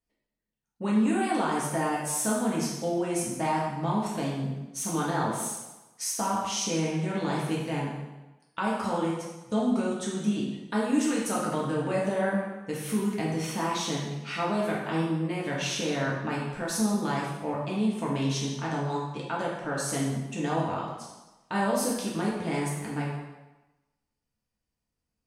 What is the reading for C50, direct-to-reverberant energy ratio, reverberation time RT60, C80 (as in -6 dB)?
1.5 dB, -5.0 dB, 1.1 s, 4.0 dB